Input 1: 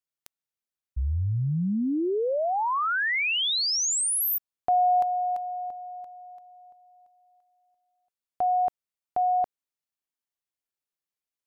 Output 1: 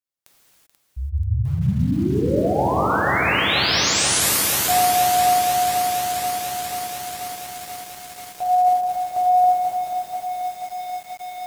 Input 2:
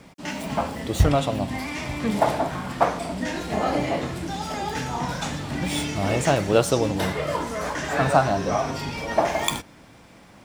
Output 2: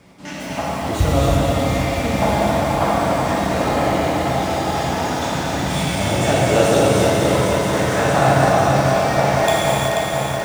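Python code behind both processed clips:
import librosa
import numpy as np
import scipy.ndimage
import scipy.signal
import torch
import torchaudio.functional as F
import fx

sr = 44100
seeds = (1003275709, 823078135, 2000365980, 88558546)

y = x + 10.0 ** (-8.5 / 20.0) * np.pad(x, (int(432 * sr / 1000.0), 0))[:len(x)]
y = fx.rev_gated(y, sr, seeds[0], gate_ms=410, shape='flat', drr_db=-6.5)
y = fx.echo_crushed(y, sr, ms=485, feedback_pct=80, bits=6, wet_db=-6.0)
y = F.gain(torch.from_numpy(y), -3.0).numpy()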